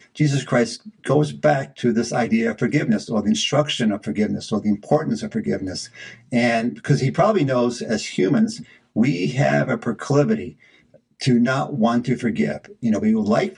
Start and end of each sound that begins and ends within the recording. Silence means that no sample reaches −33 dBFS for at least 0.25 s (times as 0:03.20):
0:08.96–0:10.50